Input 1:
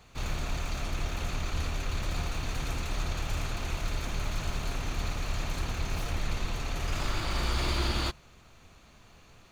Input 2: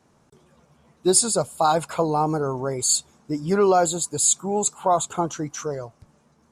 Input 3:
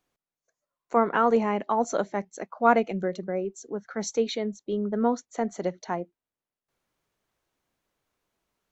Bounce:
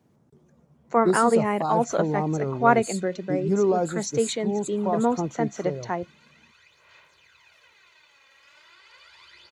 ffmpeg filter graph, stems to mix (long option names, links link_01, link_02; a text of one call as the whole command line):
ffmpeg -i stem1.wav -i stem2.wav -i stem3.wav -filter_complex "[0:a]aecho=1:1:2:0.72,aphaser=in_gain=1:out_gain=1:delay=3.7:decay=0.58:speed=0.37:type=sinusoidal,bandpass=frequency=2400:width_type=q:width=0.9:csg=0,adelay=1550,volume=-18dB[link_01];[1:a]tiltshelf=frequency=670:gain=9,volume=-7dB[link_02];[2:a]volume=1.5dB[link_03];[link_01][link_02][link_03]amix=inputs=3:normalize=0,highpass=90,equalizer=frequency=1900:width=6:gain=3.5" out.wav